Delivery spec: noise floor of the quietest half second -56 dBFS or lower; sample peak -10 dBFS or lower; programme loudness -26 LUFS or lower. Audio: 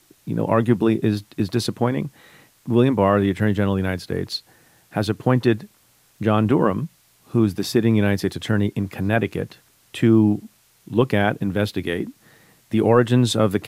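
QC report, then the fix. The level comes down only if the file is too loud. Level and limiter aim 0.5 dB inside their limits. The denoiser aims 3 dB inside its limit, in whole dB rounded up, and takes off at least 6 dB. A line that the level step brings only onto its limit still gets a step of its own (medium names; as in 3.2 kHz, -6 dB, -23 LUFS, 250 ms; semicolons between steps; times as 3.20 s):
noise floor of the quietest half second -58 dBFS: pass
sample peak -4.0 dBFS: fail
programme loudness -21.0 LUFS: fail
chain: trim -5.5 dB; peak limiter -10.5 dBFS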